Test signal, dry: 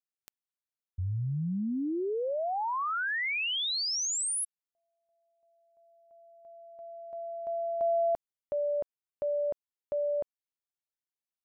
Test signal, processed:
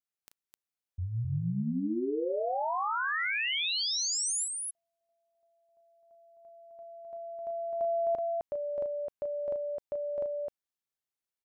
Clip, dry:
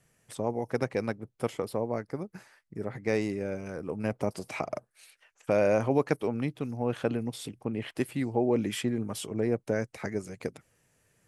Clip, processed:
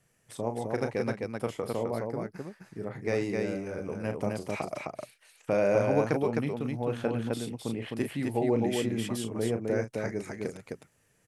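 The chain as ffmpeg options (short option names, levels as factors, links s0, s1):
-af "aecho=1:1:34.99|259.5:0.398|0.708,volume=0.794"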